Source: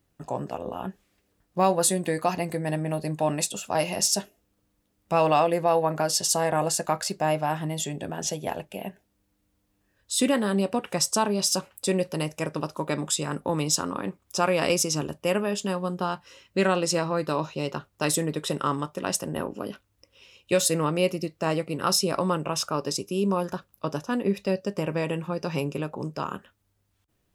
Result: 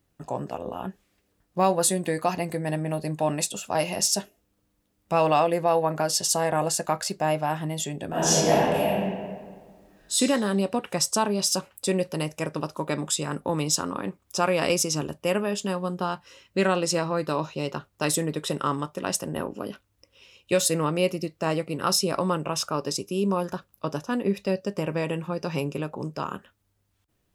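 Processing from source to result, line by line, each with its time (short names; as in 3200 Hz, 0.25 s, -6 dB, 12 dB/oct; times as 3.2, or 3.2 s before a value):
8.08–10.13 reverb throw, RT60 1.7 s, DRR -11 dB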